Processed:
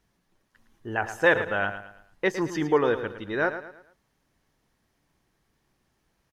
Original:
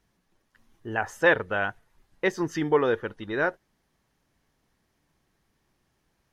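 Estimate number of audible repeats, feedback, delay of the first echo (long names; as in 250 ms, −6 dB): 3, 38%, 110 ms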